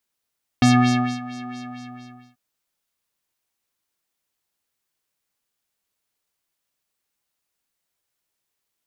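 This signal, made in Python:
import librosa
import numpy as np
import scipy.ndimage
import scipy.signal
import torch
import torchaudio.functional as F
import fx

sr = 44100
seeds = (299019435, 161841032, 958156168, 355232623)

y = fx.sub_patch_wobble(sr, seeds[0], note=59, wave='square', wave2='triangle', interval_st=-12, level2_db=-3.0, sub_db=-15.0, noise_db=-30.0, kind='lowpass', cutoff_hz=2300.0, q=2.1, env_oct=0.5, env_decay_s=0.27, env_sustain_pct=40, attack_ms=2.1, decay_s=0.58, sustain_db=-19.0, release_s=0.85, note_s=0.89, lfo_hz=4.4, wobble_oct=1.3)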